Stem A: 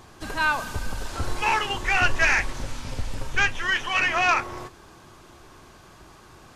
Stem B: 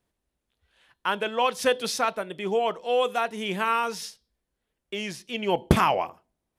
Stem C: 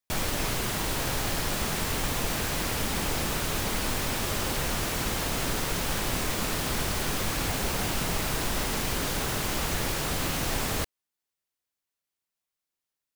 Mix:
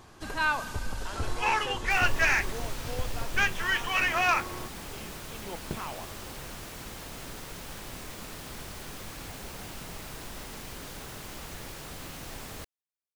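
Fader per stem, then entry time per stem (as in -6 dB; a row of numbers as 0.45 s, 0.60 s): -4.0 dB, -17.0 dB, -12.5 dB; 0.00 s, 0.00 s, 1.80 s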